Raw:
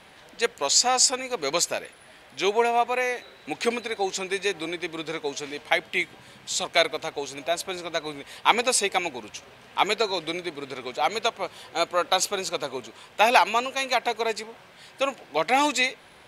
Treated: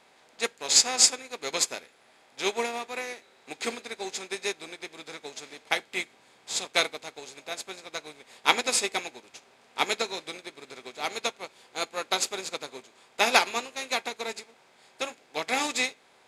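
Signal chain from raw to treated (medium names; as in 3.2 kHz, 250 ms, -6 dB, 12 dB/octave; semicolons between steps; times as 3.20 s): spectral levelling over time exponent 0.6; on a send at -8 dB: reverberation RT60 0.45 s, pre-delay 4 ms; on the sum: dynamic bell 810 Hz, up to -6 dB, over -33 dBFS, Q 0.99; upward expansion 2.5:1, over -32 dBFS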